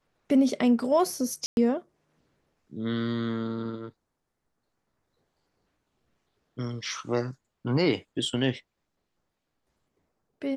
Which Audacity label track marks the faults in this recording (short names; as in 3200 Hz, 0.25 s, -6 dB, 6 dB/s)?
1.460000	1.570000	gap 0.111 s